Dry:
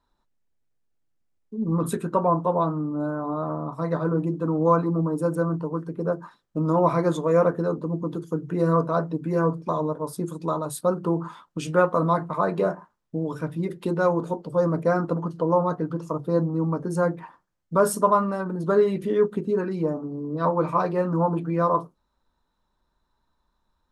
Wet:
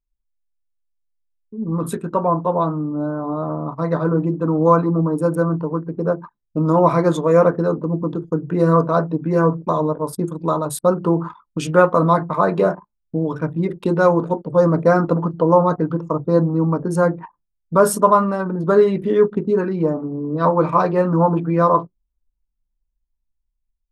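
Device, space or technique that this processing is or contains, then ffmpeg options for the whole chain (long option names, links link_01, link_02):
voice memo with heavy noise removal: -filter_complex "[0:a]asettb=1/sr,asplit=3[link_01][link_02][link_03];[link_01]atrim=end=2.764[link_04];[link_02]atrim=start=2.76:end=3.66,asetpts=PTS-STARTPTS,afade=type=in:duration=0.004:curve=qsin,afade=type=out:start_time=0.896:duration=0.004:curve=qsin,equalizer=frequency=2200:width_type=o:width=2.1:gain=-5.5[link_05];[link_03]atrim=start=3.656[link_06];[link_04][link_05]acrossfade=duration=0.004:curve1=hsin:curve2=qsin[link_07];[link_07][link_06]acrossfade=duration=0.004:curve1=qsin:curve2=hsin,anlmdn=0.398,dynaudnorm=framelen=680:gausssize=7:maxgain=11.5dB"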